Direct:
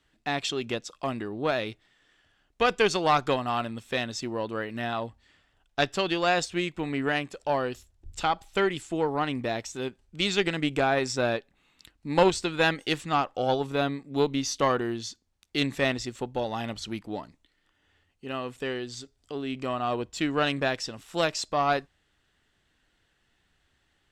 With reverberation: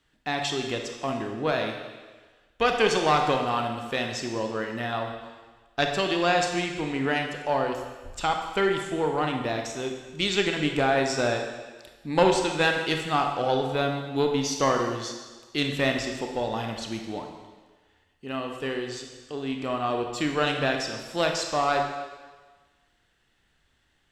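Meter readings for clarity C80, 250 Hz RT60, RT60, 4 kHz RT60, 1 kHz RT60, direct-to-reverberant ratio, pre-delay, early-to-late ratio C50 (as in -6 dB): 6.5 dB, 1.2 s, 1.4 s, 1.4 s, 1.4 s, 3.0 dB, 24 ms, 5.0 dB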